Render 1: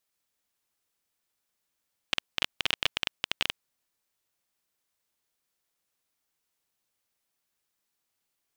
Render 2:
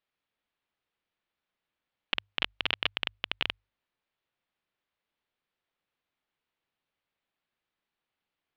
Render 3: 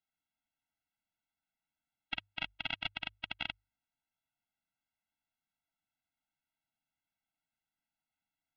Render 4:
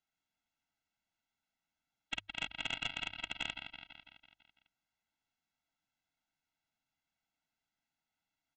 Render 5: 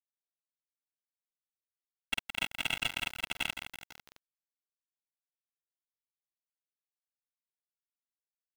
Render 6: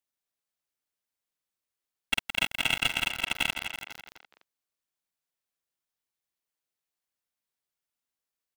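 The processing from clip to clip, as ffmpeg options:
-af "lowpass=f=3.6k:w=0.5412,lowpass=f=3.6k:w=1.3066,bandreject=f=50:t=h:w=6,bandreject=f=100:t=h:w=6"
-af "afftfilt=real='re*eq(mod(floor(b*sr/1024/320),2),0)':imag='im*eq(mod(floor(b*sr/1024/320),2),0)':win_size=1024:overlap=0.75,volume=-4dB"
-af "aecho=1:1:166|332|498|664|830|996|1162:0.299|0.173|0.1|0.0582|0.0338|0.0196|0.0114,aresample=16000,asoftclip=type=tanh:threshold=-28dB,aresample=44100,volume=2.5dB"
-af "adynamicsmooth=sensitivity=7.5:basefreq=2k,acrusher=bits=7:mix=0:aa=0.000001,volume=6dB"
-filter_complex "[0:a]asplit=2[a][b];[b]adelay=250,highpass=300,lowpass=3.4k,asoftclip=type=hard:threshold=-27dB,volume=-7dB[c];[a][c]amix=inputs=2:normalize=0,volume=6dB"

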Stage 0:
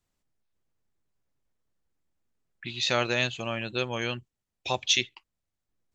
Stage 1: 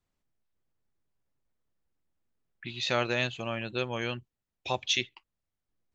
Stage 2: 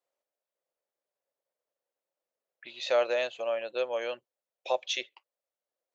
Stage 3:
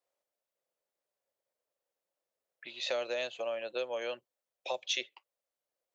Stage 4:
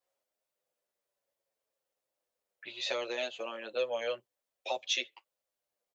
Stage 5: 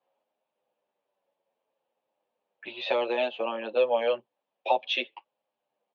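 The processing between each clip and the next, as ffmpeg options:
-af "highshelf=f=5.3k:g=-9,volume=-1.5dB"
-af "highpass=f=550:t=q:w=4.9,volume=-5dB"
-filter_complex "[0:a]acrossover=split=300|3000[a][b][c];[b]acompressor=threshold=-34dB:ratio=6[d];[a][d][c]amix=inputs=3:normalize=0"
-filter_complex "[0:a]asplit=2[a][b];[b]adelay=8.9,afreqshift=-0.61[c];[a][c]amix=inputs=2:normalize=1,volume=4.5dB"
-af "highpass=f=140:w=0.5412,highpass=f=140:w=1.3066,equalizer=f=230:t=q:w=4:g=4,equalizer=f=860:t=q:w=4:g=7,equalizer=f=1.4k:t=q:w=4:g=-6,equalizer=f=2k:t=q:w=4:g=-8,lowpass=f=3k:w=0.5412,lowpass=f=3k:w=1.3066,volume=8.5dB"

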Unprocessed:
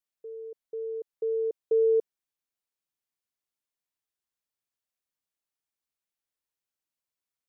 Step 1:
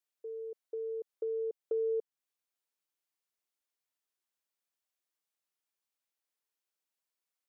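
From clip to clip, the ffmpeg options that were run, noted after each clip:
-af "acompressor=threshold=-37dB:ratio=2,highpass=290"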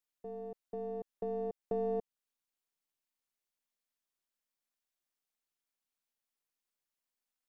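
-af "aeval=exprs='if(lt(val(0),0),0.708*val(0),val(0))':c=same,tremolo=f=250:d=0.857,volume=3dB"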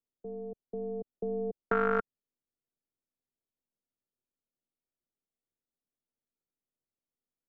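-filter_complex "[0:a]acrossover=split=140|550[a][b][c];[c]acrusher=bits=5:mix=0:aa=0.000001[d];[a][b][d]amix=inputs=3:normalize=0,lowpass=f=1.4k:t=q:w=9.6,volume=5.5dB"

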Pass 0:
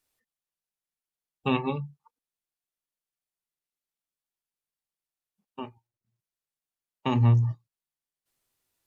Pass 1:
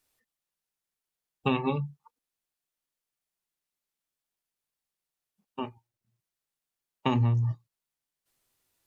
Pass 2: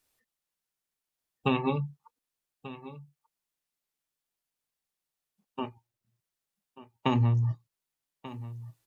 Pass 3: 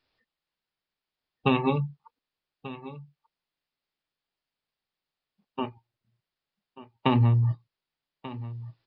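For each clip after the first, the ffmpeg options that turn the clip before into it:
-af "acompressor=threshold=-24dB:ratio=12,volume=3dB"
-af "aecho=1:1:1187:0.158"
-af "aresample=11025,aresample=44100,volume=3.5dB"

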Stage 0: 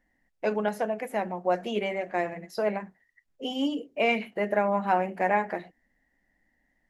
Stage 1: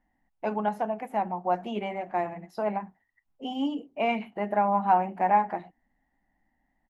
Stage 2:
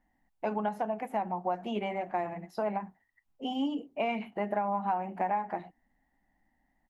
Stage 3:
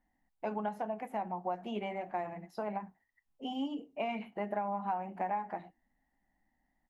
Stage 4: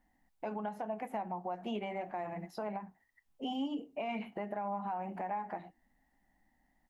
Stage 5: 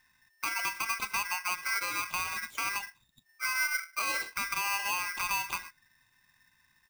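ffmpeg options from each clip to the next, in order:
-af "firequalizer=gain_entry='entry(260,0);entry(500,-8);entry(800,6);entry(1700,-7);entry(2900,-5);entry(4700,-11)':delay=0.05:min_phase=1"
-af "acompressor=threshold=-27dB:ratio=6"
-af "flanger=delay=3.8:depth=1.7:regen=-87:speed=0.38:shape=triangular"
-af "alimiter=level_in=9dB:limit=-24dB:level=0:latency=1:release=279,volume=-9dB,volume=4.5dB"
-af "aeval=exprs='val(0)*sgn(sin(2*PI*1800*n/s))':c=same,volume=5.5dB"

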